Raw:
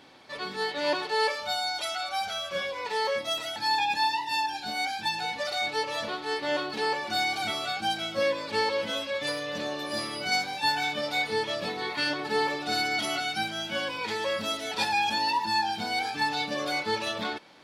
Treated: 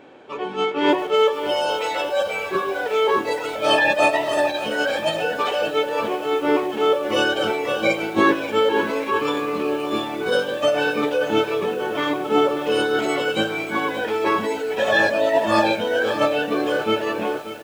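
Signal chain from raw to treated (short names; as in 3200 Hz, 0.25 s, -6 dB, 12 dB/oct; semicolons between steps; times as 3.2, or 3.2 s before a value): bell 680 Hz +11.5 dB 2.5 oct; formant shift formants -6 st; echo 93 ms -17.5 dB; lo-fi delay 0.582 s, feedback 55%, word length 6-bit, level -12 dB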